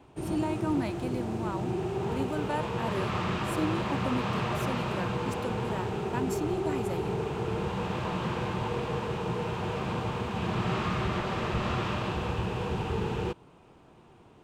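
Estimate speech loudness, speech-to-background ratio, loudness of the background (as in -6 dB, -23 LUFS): -36.5 LUFS, -4.5 dB, -32.0 LUFS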